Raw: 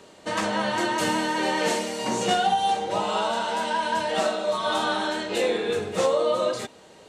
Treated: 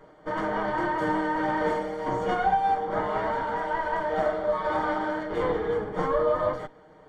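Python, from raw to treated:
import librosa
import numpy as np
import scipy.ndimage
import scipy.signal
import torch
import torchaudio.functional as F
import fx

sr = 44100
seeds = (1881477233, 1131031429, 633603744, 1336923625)

y = fx.lower_of_two(x, sr, delay_ms=6.5)
y = scipy.signal.savgol_filter(y, 41, 4, mode='constant')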